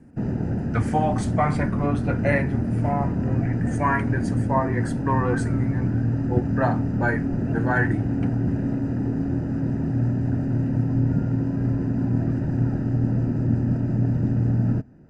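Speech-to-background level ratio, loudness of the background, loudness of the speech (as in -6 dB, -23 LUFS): -3.0 dB, -24.5 LUFS, -27.5 LUFS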